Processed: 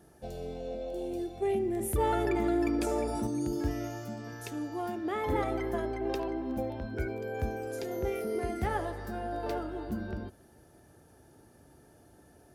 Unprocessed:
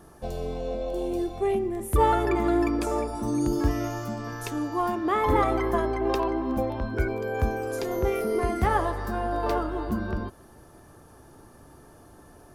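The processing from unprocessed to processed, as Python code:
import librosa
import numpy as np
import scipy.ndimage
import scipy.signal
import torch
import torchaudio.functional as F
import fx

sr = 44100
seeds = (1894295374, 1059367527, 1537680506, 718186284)

y = scipy.signal.sosfilt(scipy.signal.butter(2, 53.0, 'highpass', fs=sr, output='sos'), x)
y = fx.peak_eq(y, sr, hz=1100.0, db=-13.0, octaves=0.33)
y = y + 10.0 ** (-23.0 / 20.0) * np.pad(y, (int(73 * sr / 1000.0), 0))[:len(y)]
y = fx.env_flatten(y, sr, amount_pct=50, at=(1.42, 3.27))
y = y * 10.0 ** (-6.5 / 20.0)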